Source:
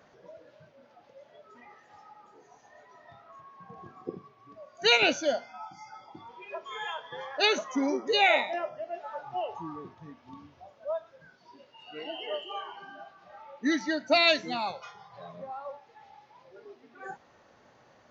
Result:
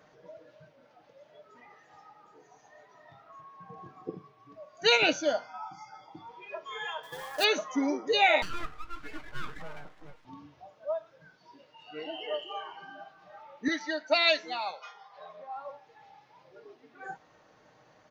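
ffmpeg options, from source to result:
-filter_complex "[0:a]asettb=1/sr,asplit=3[s0][s1][s2];[s0]atrim=end=5.264[s3];[s1]atrim=start=5.26:end=5.85,asetpts=PTS-STARTPTS,afade=t=in:d=0.004:c=qsin,afade=t=out:st=0.586:d=0.004:c=qsin,equalizer=f=1100:t=o:w=0.51:g=11[s4];[s2]atrim=start=5.846[s5];[s3][s4]acrossfade=d=0.004:c1=hsin:c2=qsin[s6];[s6][s5]acrossfade=d=0.004:c1=qsin:c2=hsin,asettb=1/sr,asplit=3[s7][s8][s9];[s7]atrim=end=7.034[s10];[s8]atrim=start=7.03:end=7.44,asetpts=PTS-STARTPTS,afade=t=in:d=0.004:c=qsin,afade=t=out:st=0.406:d=0.004:c=qsin,acrusher=bits=2:mode=log:mix=0:aa=0.000001[s11];[s9]atrim=start=7.436[s12];[s10][s11]acrossfade=d=0.004:c1=hsin:c2=qsin[s13];[s13][s12]acrossfade=d=0.004:c1=qsin:c2=hsin,asettb=1/sr,asplit=3[s14][s15][s16];[s14]atrim=end=8.424[s17];[s15]atrim=start=8.42:end=10.25,asetpts=PTS-STARTPTS,afade=t=in:d=0.004:c=qsin,afade=t=out:st=1.826:d=0.004:c=qsin,aeval=exprs='abs(val(0))':c=same[s18];[s16]atrim=start=10.246[s19];[s17][s18]acrossfade=d=0.004:c1=hsin:c2=qsin[s20];[s20][s19]acrossfade=d=0.004:c1=qsin:c2=hsin,asettb=1/sr,asplit=3[s21][s22][s23];[s21]atrim=end=13.684[s24];[s22]atrim=start=13.68:end=15.56,asetpts=PTS-STARTPTS,afade=t=in:d=0.004:c=qsin,afade=t=out:st=1.876:d=0.004:c=qsin,highpass=490,lowpass=6200[s25];[s23]atrim=start=15.556[s26];[s24][s25]acrossfade=d=0.004:c1=hsin:c2=qsin[s27];[s27][s26]acrossfade=d=0.004:c1=qsin:c2=hsin,aecho=1:1:6.5:0.4,volume=0.841"

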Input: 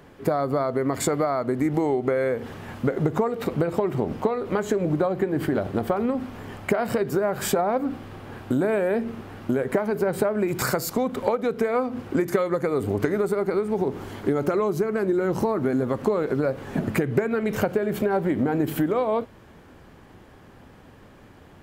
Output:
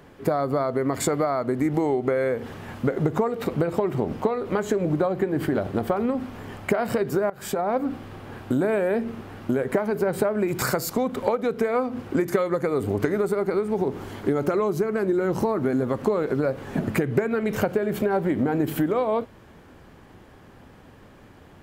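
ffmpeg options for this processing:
-filter_complex "[0:a]asplit=2[s0][s1];[s0]atrim=end=7.3,asetpts=PTS-STARTPTS,afade=t=out:st=7.296:d=0.004:c=hsin:silence=0.105925[s2];[s1]atrim=start=7.3,asetpts=PTS-STARTPTS,afade=t=in:d=0.44:silence=0.105925[s3];[s2][s3]concat=n=2:v=0:a=1"

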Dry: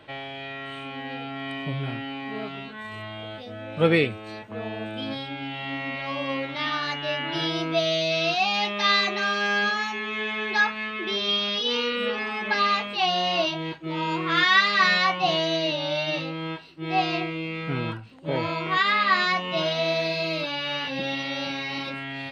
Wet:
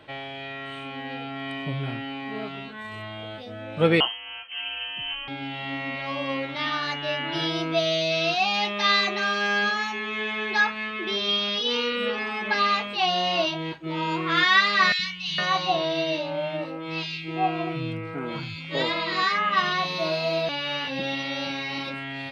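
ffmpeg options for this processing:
-filter_complex "[0:a]asettb=1/sr,asplit=3[s0][s1][s2];[s0]atrim=end=4.004[s3];[s1]atrim=start=4:end=5.28,asetpts=PTS-STARTPTS,afade=t=in:d=0.004:c=qsin,afade=t=out:st=1.276:d=0.004:c=qsin,lowpass=f=2800:t=q:w=0.5098,lowpass=f=2800:t=q:w=0.6013,lowpass=f=2800:t=q:w=0.9,lowpass=f=2800:t=q:w=2.563,afreqshift=-3300[s4];[s2]atrim=start=5.276[s5];[s3][s4]acrossfade=d=0.004:c1=hsin:c2=qsin[s6];[s6][s5]acrossfade=d=0.004:c1=qsin:c2=hsin,asettb=1/sr,asplit=3[s7][s8][s9];[s7]atrim=end=14.924[s10];[s8]atrim=start=14.92:end=20.49,asetpts=PTS-STARTPTS,afade=t=in:d=0.004:c=qsin,afade=t=out:st=5.566:d=0.004:c=qsin,acrossover=split=180|2100[s11][s12][s13];[s11]adelay=70[s14];[s12]adelay=460[s15];[s14][s15][s13]amix=inputs=3:normalize=0,atrim=end_sample=245637[s16];[s9]atrim=start=20.486[s17];[s10][s16]acrossfade=d=0.004:c1=hsin:c2=qsin[s18];[s18][s17]acrossfade=d=0.004:c1=qsin:c2=hsin"

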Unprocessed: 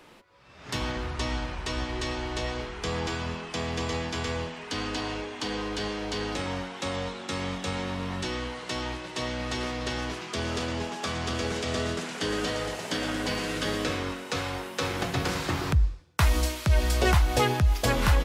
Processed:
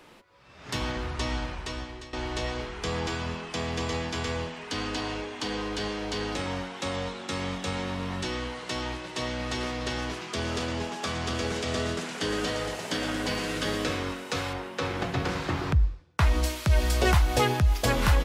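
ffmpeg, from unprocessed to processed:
-filter_complex "[0:a]asettb=1/sr,asplit=3[s0][s1][s2];[s0]atrim=end=14.534[s3];[s1]atrim=start=14.53:end=16.44,asetpts=PTS-STARTPTS,afade=t=in:d=0.004:c=qsin,afade=t=out:st=1.906:d=0.004:c=qsin,aemphasis=mode=reproduction:type=50kf[s4];[s2]atrim=start=16.436[s5];[s3][s4]acrossfade=d=0.004:c1=hsin:c2=qsin[s6];[s6][s5]acrossfade=d=0.004:c1=qsin:c2=hsin,asplit=2[s7][s8];[s7]atrim=end=2.13,asetpts=PTS-STARTPTS,afade=t=out:st=1.45:d=0.68:silence=0.133352[s9];[s8]atrim=start=2.13,asetpts=PTS-STARTPTS,afade=t=in:d=0.004:c=hsin:silence=0.133352[s10];[s9][s10]concat=n=2:v=0:a=1"

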